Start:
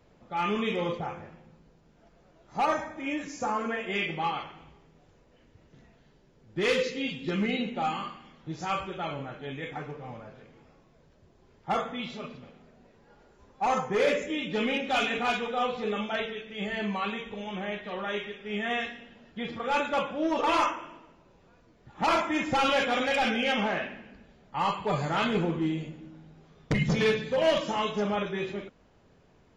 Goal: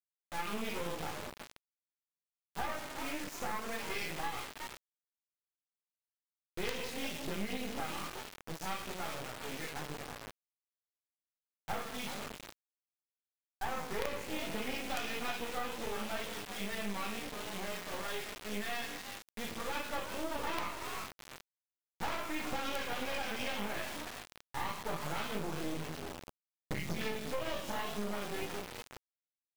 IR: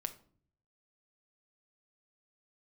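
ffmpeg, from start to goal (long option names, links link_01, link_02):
-filter_complex "[0:a]flanger=delay=16.5:depth=3.4:speed=0.45,bandreject=frequency=60:width_type=h:width=6,bandreject=frequency=120:width_type=h:width=6,bandreject=frequency=180:width_type=h:width=6,bandreject=frequency=240:width_type=h:width=6,bandreject=frequency=300:width_type=h:width=6,bandreject=frequency=360:width_type=h:width=6,bandreject=frequency=420:width_type=h:width=6,asplit=5[link_01][link_02][link_03][link_04][link_05];[link_02]adelay=367,afreqshift=89,volume=-13dB[link_06];[link_03]adelay=734,afreqshift=178,volume=-21.9dB[link_07];[link_04]adelay=1101,afreqshift=267,volume=-30.7dB[link_08];[link_05]adelay=1468,afreqshift=356,volume=-39.6dB[link_09];[link_01][link_06][link_07][link_08][link_09]amix=inputs=5:normalize=0,acrusher=bits=4:dc=4:mix=0:aa=0.000001,acompressor=threshold=-33dB:ratio=5,volume=1dB"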